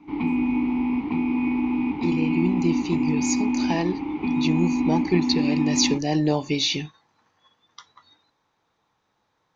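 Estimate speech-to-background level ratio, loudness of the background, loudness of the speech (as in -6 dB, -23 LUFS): -1.0 dB, -24.5 LUFS, -25.5 LUFS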